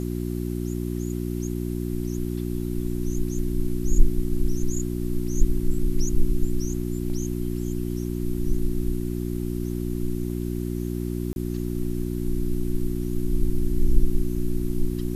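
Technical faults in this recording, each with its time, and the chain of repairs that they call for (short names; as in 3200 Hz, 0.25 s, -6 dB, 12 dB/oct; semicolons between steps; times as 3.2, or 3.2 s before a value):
hum 60 Hz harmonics 6 -28 dBFS
11.33–11.36 gap 31 ms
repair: de-hum 60 Hz, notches 6; interpolate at 11.33, 31 ms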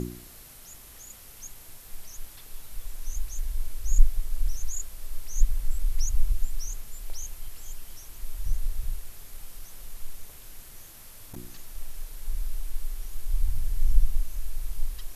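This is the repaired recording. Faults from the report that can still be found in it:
none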